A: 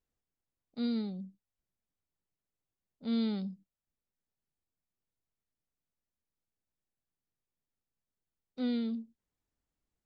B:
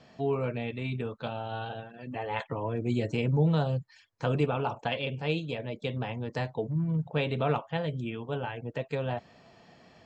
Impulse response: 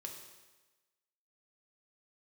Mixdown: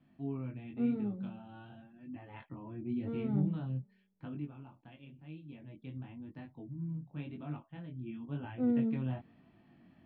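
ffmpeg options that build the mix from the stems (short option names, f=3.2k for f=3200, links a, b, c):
-filter_complex "[0:a]lowpass=1.1k,volume=1dB,asplit=2[a][b];[b]volume=-7.5dB[c];[1:a]lowshelf=f=380:t=q:w=3:g=7,bandreject=f=450:w=12,volume=0.5dB,afade=t=out:st=4.14:d=0.34:silence=0.354813,afade=t=in:st=5.33:d=0.32:silence=0.473151,afade=t=in:st=7.95:d=0.48:silence=0.398107[d];[2:a]atrim=start_sample=2205[e];[c][e]afir=irnorm=-1:irlink=0[f];[a][d][f]amix=inputs=3:normalize=0,lowpass=f=3.2k:w=0.5412,lowpass=f=3.2k:w=1.3066,flanger=delay=19.5:depth=3.8:speed=0.94"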